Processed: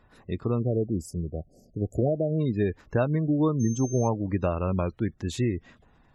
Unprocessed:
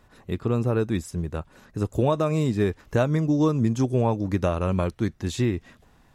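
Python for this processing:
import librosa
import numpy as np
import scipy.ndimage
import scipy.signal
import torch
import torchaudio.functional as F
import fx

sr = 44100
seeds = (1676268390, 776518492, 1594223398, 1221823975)

y = fx.brickwall_bandstop(x, sr, low_hz=770.0, high_hz=4400.0, at=(0.58, 2.38), fade=0.02)
y = fx.dmg_tone(y, sr, hz=6300.0, level_db=-37.0, at=(3.59, 4.07), fade=0.02)
y = fx.spec_gate(y, sr, threshold_db=-30, keep='strong')
y = y * librosa.db_to_amplitude(-2.5)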